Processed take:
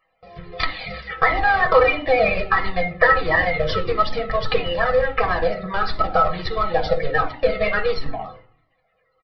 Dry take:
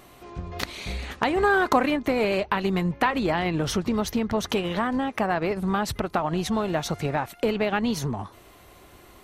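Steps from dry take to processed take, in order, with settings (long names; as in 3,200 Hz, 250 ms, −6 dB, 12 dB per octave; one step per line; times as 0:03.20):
spectral magnitudes quantised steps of 30 dB
noise gate with hold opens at −37 dBFS
parametric band 2,000 Hz +12.5 dB 0.27 octaves
comb filter 6.2 ms, depth 49%
harmonic and percussive parts rebalanced percussive +4 dB
spectral tilt +1.5 dB per octave
hollow resonant body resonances 510/740/1,300 Hz, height 13 dB, ringing for 60 ms
in parallel at −7 dB: comparator with hysteresis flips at −15.5 dBFS
on the sum: hum removal 123.3 Hz, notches 30
convolution reverb RT60 0.45 s, pre-delay 6 ms, DRR 6.5 dB
downsampling to 11,025 Hz
flanger whose copies keep moving one way falling 1.5 Hz
level −1.5 dB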